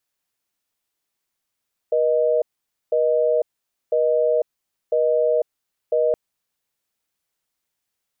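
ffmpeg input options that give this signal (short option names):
-f lavfi -i "aevalsrc='0.119*(sin(2*PI*480*t)+sin(2*PI*620*t))*clip(min(mod(t,1),0.5-mod(t,1))/0.005,0,1)':d=4.22:s=44100"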